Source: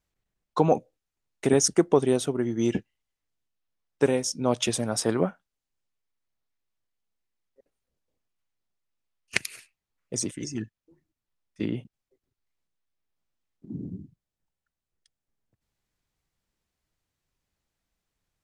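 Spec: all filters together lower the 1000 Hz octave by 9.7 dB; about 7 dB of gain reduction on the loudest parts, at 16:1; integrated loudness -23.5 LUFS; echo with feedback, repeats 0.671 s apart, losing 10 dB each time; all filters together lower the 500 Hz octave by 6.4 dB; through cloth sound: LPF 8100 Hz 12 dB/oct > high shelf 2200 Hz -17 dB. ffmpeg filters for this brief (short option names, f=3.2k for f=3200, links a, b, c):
-af "equalizer=f=500:t=o:g=-6,equalizer=f=1k:t=o:g=-7.5,acompressor=threshold=-25dB:ratio=16,lowpass=8.1k,highshelf=f=2.2k:g=-17,aecho=1:1:671|1342|2013|2684:0.316|0.101|0.0324|0.0104,volume=13.5dB"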